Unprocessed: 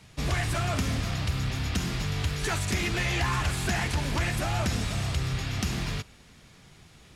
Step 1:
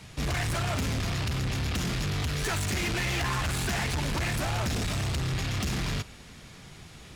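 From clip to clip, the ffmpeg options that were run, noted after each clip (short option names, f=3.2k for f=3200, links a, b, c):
-af "asoftclip=type=tanh:threshold=-32.5dB,volume=6dB"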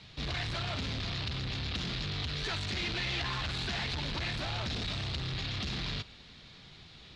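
-af "lowpass=f=4k:t=q:w=3.4,volume=-7.5dB"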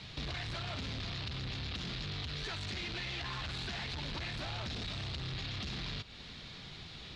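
-af "acompressor=threshold=-44dB:ratio=4,volume=4.5dB"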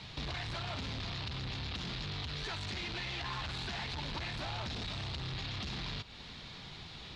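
-af "equalizer=f=910:t=o:w=0.57:g=5"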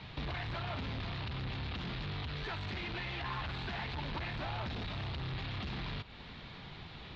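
-af "lowpass=2.8k,volume=1.5dB"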